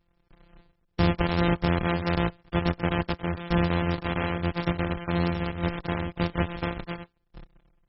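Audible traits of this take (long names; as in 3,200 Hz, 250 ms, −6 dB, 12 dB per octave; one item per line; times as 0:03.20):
a buzz of ramps at a fixed pitch in blocks of 256 samples
MP3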